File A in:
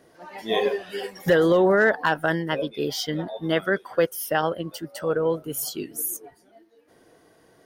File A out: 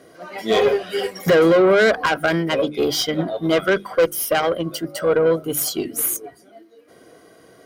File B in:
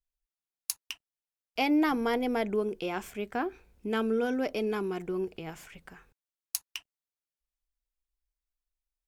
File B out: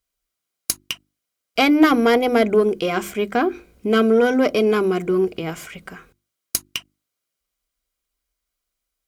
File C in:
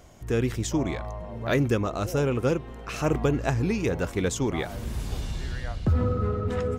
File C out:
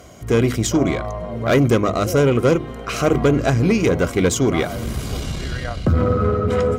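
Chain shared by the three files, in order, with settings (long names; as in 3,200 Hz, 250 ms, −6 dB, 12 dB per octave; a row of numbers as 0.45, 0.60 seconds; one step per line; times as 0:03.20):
tube saturation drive 20 dB, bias 0.4
mains-hum notches 50/100/150/200/250/300/350 Hz
notch comb filter 890 Hz
loudness normalisation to −19 LKFS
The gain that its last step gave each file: +10.5, +15.5, +12.5 decibels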